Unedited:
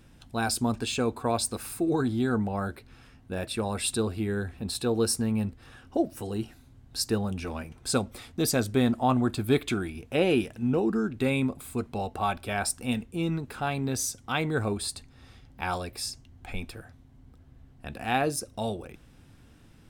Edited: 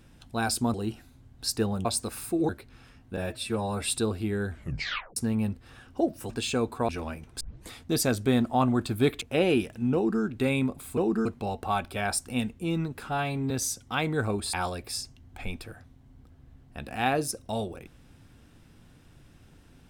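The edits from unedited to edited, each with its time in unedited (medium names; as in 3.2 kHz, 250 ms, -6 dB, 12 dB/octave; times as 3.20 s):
0.74–1.33 s: swap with 6.26–7.37 s
1.97–2.67 s: delete
3.35–3.78 s: stretch 1.5×
4.46 s: tape stop 0.67 s
7.89 s: tape start 0.30 s
9.70–10.02 s: delete
10.75–11.03 s: copy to 11.78 s
13.58–13.88 s: stretch 1.5×
14.91–15.62 s: delete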